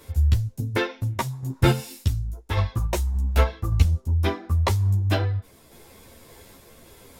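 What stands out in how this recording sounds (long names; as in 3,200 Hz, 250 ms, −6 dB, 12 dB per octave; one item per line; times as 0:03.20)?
sample-and-hold tremolo
a shimmering, thickened sound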